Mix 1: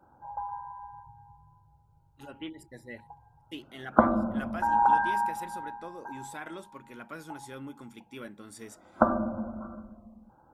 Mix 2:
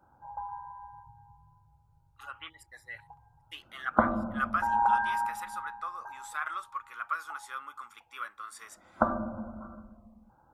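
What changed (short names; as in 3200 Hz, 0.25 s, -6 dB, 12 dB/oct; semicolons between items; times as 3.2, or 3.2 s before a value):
speech: add resonant high-pass 1200 Hz, resonance Q 10; background: add bell 360 Hz -6.5 dB 2.2 oct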